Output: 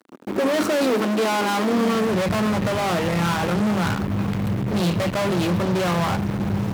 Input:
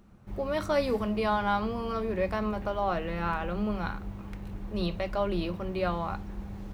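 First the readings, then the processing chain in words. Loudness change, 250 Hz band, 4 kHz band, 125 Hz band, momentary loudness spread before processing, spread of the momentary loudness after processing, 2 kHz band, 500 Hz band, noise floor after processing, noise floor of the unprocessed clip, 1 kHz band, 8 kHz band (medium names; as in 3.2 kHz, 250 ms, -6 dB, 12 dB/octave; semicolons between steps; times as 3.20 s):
+9.5 dB, +11.5 dB, +12.5 dB, +13.0 dB, 13 LU, 4 LU, +10.0 dB, +8.0 dB, -29 dBFS, -42 dBFS, +7.0 dB, no reading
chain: fuzz box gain 43 dB, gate -51 dBFS; high-pass sweep 280 Hz -> 120 Hz, 1.68–2.22 s; trim -8 dB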